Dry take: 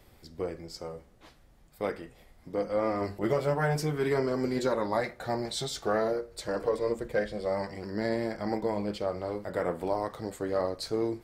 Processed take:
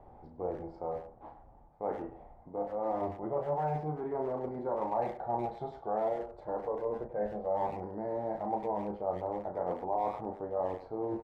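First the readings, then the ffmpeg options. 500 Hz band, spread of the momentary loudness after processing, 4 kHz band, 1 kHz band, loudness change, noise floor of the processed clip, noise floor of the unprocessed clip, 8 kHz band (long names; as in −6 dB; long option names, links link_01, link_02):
−4.5 dB, 7 LU, below −25 dB, +1.0 dB, −4.5 dB, −56 dBFS, −59 dBFS, below −30 dB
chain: -filter_complex "[0:a]areverse,acompressor=threshold=-38dB:ratio=4,areverse,lowpass=frequency=830:width_type=q:width=4.9,asplit=2[link_01][link_02];[link_02]adelay=33,volume=-6dB[link_03];[link_01][link_03]amix=inputs=2:normalize=0,asplit=2[link_04][link_05];[link_05]adelay=100,highpass=300,lowpass=3400,asoftclip=type=hard:threshold=-32dB,volume=-11dB[link_06];[link_04][link_06]amix=inputs=2:normalize=0"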